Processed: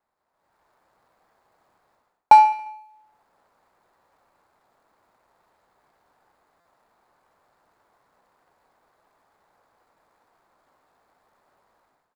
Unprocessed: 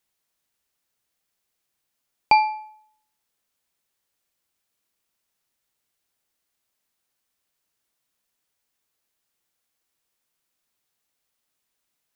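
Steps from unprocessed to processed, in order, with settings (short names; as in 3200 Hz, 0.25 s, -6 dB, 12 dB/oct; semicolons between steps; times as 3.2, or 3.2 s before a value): median filter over 15 samples; bell 860 Hz +12.5 dB 1.9 oct; AGC gain up to 15 dB; on a send: feedback echo 70 ms, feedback 53%, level -15.5 dB; on the sum: stuck buffer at 6.6, samples 256, times 8; gain -1 dB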